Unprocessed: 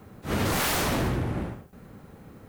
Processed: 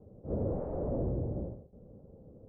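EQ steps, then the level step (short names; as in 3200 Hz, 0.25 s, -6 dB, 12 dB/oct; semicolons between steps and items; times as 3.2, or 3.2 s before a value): ladder low-pass 610 Hz, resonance 60%; air absorption 250 m; low shelf 110 Hz +9 dB; 0.0 dB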